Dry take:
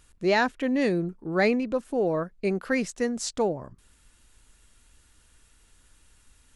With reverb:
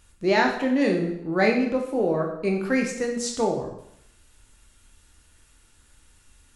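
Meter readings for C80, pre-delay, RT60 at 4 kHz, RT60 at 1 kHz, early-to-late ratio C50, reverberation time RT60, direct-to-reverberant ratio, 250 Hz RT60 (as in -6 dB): 9.0 dB, 6 ms, 0.70 s, 0.75 s, 5.5 dB, 0.75 s, 1.0 dB, 0.75 s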